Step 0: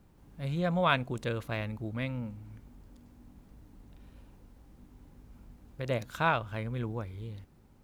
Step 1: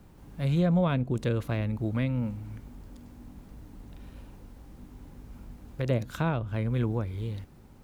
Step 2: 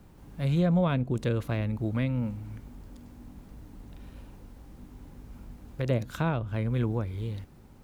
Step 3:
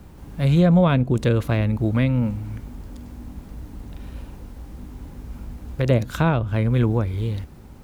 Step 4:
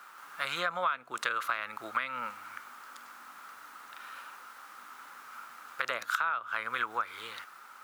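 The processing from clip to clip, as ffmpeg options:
-filter_complex "[0:a]acrossover=split=450[s0][s1];[s1]acompressor=threshold=0.00501:ratio=3[s2];[s0][s2]amix=inputs=2:normalize=0,volume=2.37"
-af anull
-af "equalizer=f=65:w=5.3:g=10,volume=2.66"
-af "highpass=f=1300:t=q:w=6.2,acompressor=threshold=0.0447:ratio=10"

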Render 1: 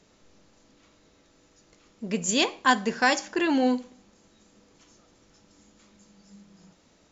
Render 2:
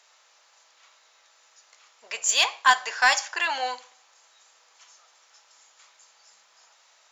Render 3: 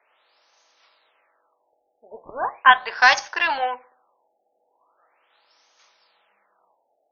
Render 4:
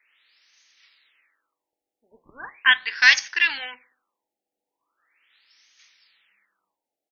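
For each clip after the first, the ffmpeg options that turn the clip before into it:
-filter_complex "[0:a]highpass=f=790:w=0.5412,highpass=f=790:w=1.3066,asplit=2[s0][s1];[s1]asoftclip=type=tanh:threshold=0.0562,volume=0.501[s2];[s0][s2]amix=inputs=2:normalize=0,volume=1.33"
-filter_complex "[0:a]asplit=2[s0][s1];[s1]adynamicsmooth=sensitivity=3:basefreq=770,volume=1.26[s2];[s0][s2]amix=inputs=2:normalize=0,afftfilt=real='re*lt(b*sr/1024,830*pow(6700/830,0.5+0.5*sin(2*PI*0.39*pts/sr)))':imag='im*lt(b*sr/1024,830*pow(6700/830,0.5+0.5*sin(2*PI*0.39*pts/sr)))':win_size=1024:overlap=0.75,volume=0.841"
-af "firequalizer=gain_entry='entry(290,0);entry(450,-10);entry(660,-17);entry(1900,11);entry(3700,9)':delay=0.05:min_phase=1,volume=0.501"

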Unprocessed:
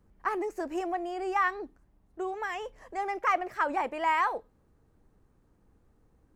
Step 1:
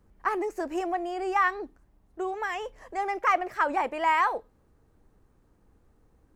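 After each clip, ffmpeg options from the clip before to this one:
-af "equalizer=f=160:w=0.86:g=-2.5,volume=1.41"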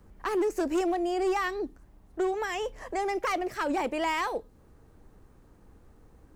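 -filter_complex "[0:a]acrossover=split=460|3000[s0][s1][s2];[s1]acompressor=threshold=0.00631:ratio=3[s3];[s0][s3][s2]amix=inputs=3:normalize=0,volume=29.9,asoftclip=hard,volume=0.0335,volume=2.24"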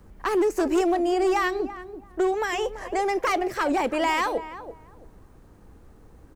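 -filter_complex "[0:a]asplit=2[s0][s1];[s1]adelay=335,lowpass=f=1200:p=1,volume=0.266,asplit=2[s2][s3];[s3]adelay=335,lowpass=f=1200:p=1,volume=0.23,asplit=2[s4][s5];[s5]adelay=335,lowpass=f=1200:p=1,volume=0.23[s6];[s0][s2][s4][s6]amix=inputs=4:normalize=0,volume=1.78"

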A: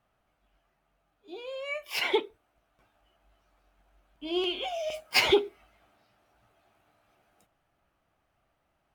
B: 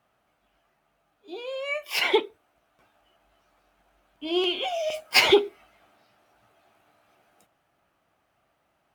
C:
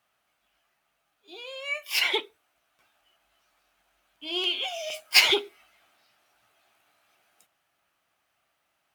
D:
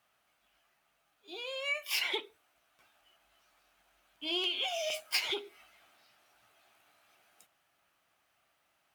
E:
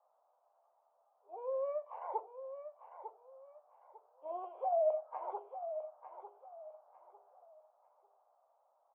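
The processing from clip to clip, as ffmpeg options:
-af "highpass=f=160:p=1,volume=1.78"
-af "tiltshelf=f=1200:g=-7.5,volume=0.631"
-af "acompressor=threshold=0.0355:ratio=16"
-af "asuperpass=centerf=720:order=8:qfactor=1.3,aecho=1:1:900|1800|2700:0.316|0.0917|0.0266,volume=2.24"

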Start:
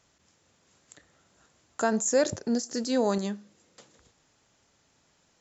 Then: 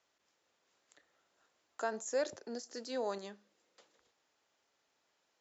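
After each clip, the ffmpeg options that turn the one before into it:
-filter_complex "[0:a]acrossover=split=320 6400:gain=0.126 1 0.141[s0][s1][s2];[s0][s1][s2]amix=inputs=3:normalize=0,volume=0.355"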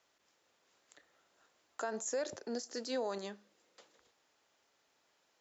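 -af "alimiter=level_in=2.37:limit=0.0631:level=0:latency=1:release=106,volume=0.422,volume=1.5"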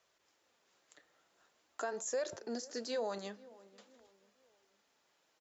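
-filter_complex "[0:a]asplit=2[s0][s1];[s1]adelay=489,lowpass=f=1400:p=1,volume=0.1,asplit=2[s2][s3];[s3]adelay=489,lowpass=f=1400:p=1,volume=0.42,asplit=2[s4][s5];[s5]adelay=489,lowpass=f=1400:p=1,volume=0.42[s6];[s0][s2][s4][s6]amix=inputs=4:normalize=0,flanger=delay=1.7:depth=4.9:regen=-54:speed=0.46:shape=sinusoidal,volume=1.5"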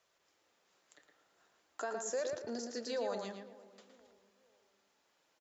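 -filter_complex "[0:a]asplit=2[s0][s1];[s1]adelay=114,lowpass=f=2800:p=1,volume=0.631,asplit=2[s2][s3];[s3]adelay=114,lowpass=f=2800:p=1,volume=0.29,asplit=2[s4][s5];[s5]adelay=114,lowpass=f=2800:p=1,volume=0.29,asplit=2[s6][s7];[s7]adelay=114,lowpass=f=2800:p=1,volume=0.29[s8];[s0][s2][s4][s6][s8]amix=inputs=5:normalize=0,volume=0.891"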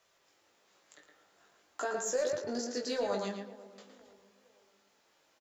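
-filter_complex "[0:a]asplit=2[s0][s1];[s1]asoftclip=type=hard:threshold=0.0168,volume=0.596[s2];[s0][s2]amix=inputs=2:normalize=0,asplit=2[s3][s4];[s4]adelay=20,volume=0.631[s5];[s3][s5]amix=inputs=2:normalize=0"

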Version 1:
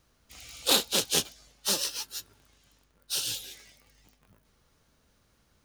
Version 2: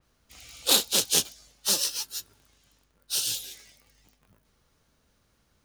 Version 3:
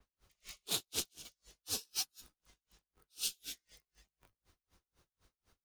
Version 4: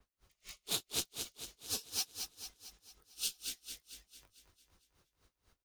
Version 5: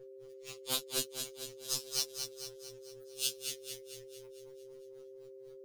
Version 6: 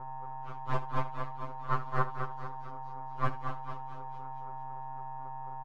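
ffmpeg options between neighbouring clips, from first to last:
-af "adynamicequalizer=threshold=0.0112:dfrequency=3800:dqfactor=0.7:tfrequency=3800:tqfactor=0.7:attack=5:release=100:ratio=0.375:range=3:mode=boostabove:tftype=highshelf,volume=0.891"
-af "acompressor=threshold=0.0398:ratio=16,afreqshift=-100,aeval=exprs='val(0)*pow(10,-39*(0.5-0.5*cos(2*PI*4*n/s))/20)':c=same"
-af "aecho=1:1:225|450|675|900|1125|1350|1575:0.473|0.251|0.133|0.0704|0.0373|0.0198|0.0105"
-af "aeval=exprs='val(0)+0.00141*sin(2*PI*460*n/s)':c=same,aeval=exprs='val(0)*sin(2*PI*69*n/s)':c=same,afftfilt=real='re*2.45*eq(mod(b,6),0)':imag='im*2.45*eq(mod(b,6),0)':win_size=2048:overlap=0.75,volume=2.37"
-af "aeval=exprs='abs(val(0))':c=same,lowpass=f=1100:t=q:w=4.4,aecho=1:1:74:0.178,volume=2.51"

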